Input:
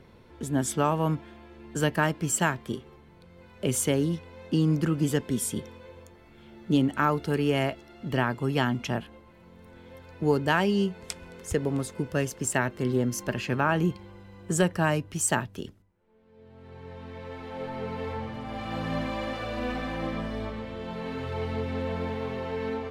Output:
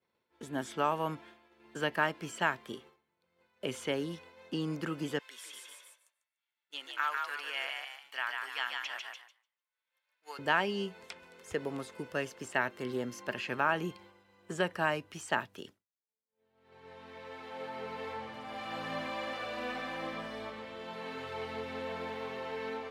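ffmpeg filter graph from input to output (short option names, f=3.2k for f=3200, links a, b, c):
-filter_complex "[0:a]asettb=1/sr,asplit=3[a][b][c];[a]atrim=end=5.194[d];[b]atrim=start=5.19:end=10.39,asetpts=PTS-STARTPTS,afade=t=in:d=0.004:c=qsin,afade=t=out:st=5.196:d=0.004:c=qsin,highpass=1.4k,asplit=7[e][f][g][h][i][j][k];[f]adelay=147,afreqshift=59,volume=-3.5dB[l];[g]adelay=294,afreqshift=118,volume=-10.4dB[m];[h]adelay=441,afreqshift=177,volume=-17.4dB[n];[i]adelay=588,afreqshift=236,volume=-24.3dB[o];[j]adelay=735,afreqshift=295,volume=-31.2dB[p];[k]adelay=882,afreqshift=354,volume=-38.2dB[q];[e][l][m][n][o][p][q]amix=inputs=7:normalize=0,atrim=end_sample=229320[r];[c]atrim=start=10.386[s];[d][r]acrossfade=d=0.004:c1=hsin:c2=qsin[t];[t][s]acrossfade=d=0.004:c1=qsin:c2=hsin,agate=range=-33dB:threshold=-41dB:ratio=3:detection=peak,highpass=f=740:p=1,acrossover=split=4000[u][v];[v]acompressor=threshold=-52dB:ratio=4:attack=1:release=60[w];[u][w]amix=inputs=2:normalize=0,volume=-1.5dB"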